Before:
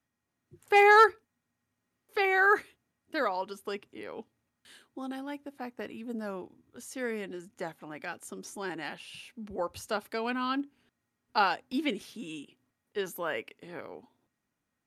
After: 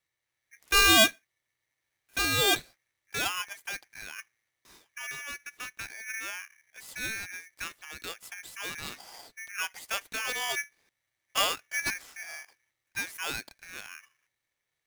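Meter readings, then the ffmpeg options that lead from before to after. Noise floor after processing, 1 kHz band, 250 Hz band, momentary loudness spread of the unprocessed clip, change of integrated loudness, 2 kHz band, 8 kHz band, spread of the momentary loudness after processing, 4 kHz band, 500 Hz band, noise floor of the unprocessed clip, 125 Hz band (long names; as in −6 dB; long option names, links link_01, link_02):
−85 dBFS, −6.5 dB, −4.0 dB, 20 LU, +0.5 dB, 0.0 dB, +16.5 dB, 19 LU, +12.5 dB, −7.0 dB, −84 dBFS, +5.5 dB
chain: -af "aeval=exprs='if(lt(val(0),0),0.708*val(0),val(0))':channel_layout=same,aeval=exprs='val(0)*sgn(sin(2*PI*2000*n/s))':channel_layout=same"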